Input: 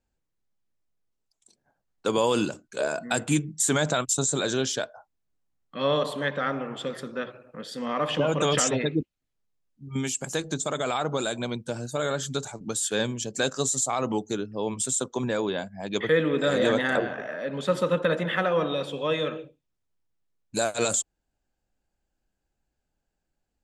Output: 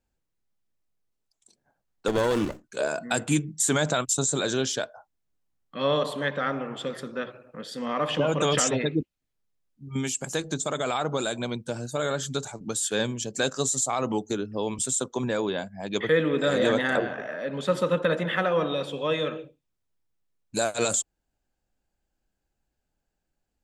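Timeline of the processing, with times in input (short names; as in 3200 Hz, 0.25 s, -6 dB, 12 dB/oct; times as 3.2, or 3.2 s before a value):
2.08–2.64 running maximum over 17 samples
14.3–14.79 three-band squash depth 70%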